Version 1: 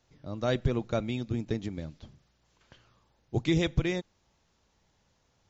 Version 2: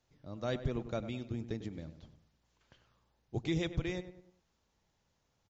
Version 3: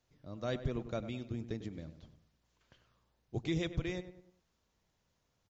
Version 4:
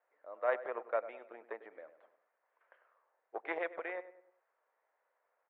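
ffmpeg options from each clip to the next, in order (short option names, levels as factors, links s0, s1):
-filter_complex "[0:a]asplit=2[s0][s1];[s1]adelay=99,lowpass=f=2000:p=1,volume=0.266,asplit=2[s2][s3];[s3]adelay=99,lowpass=f=2000:p=1,volume=0.44,asplit=2[s4][s5];[s5]adelay=99,lowpass=f=2000:p=1,volume=0.44,asplit=2[s6][s7];[s7]adelay=99,lowpass=f=2000:p=1,volume=0.44[s8];[s0][s2][s4][s6][s8]amix=inputs=5:normalize=0,volume=0.422"
-af "bandreject=f=840:w=16,volume=0.891"
-af "aeval=exprs='0.075*(cos(1*acos(clip(val(0)/0.075,-1,1)))-cos(1*PI/2))+0.0133*(cos(3*acos(clip(val(0)/0.075,-1,1)))-cos(3*PI/2))':c=same,asuperpass=centerf=1000:order=8:qfactor=0.66,volume=3.76"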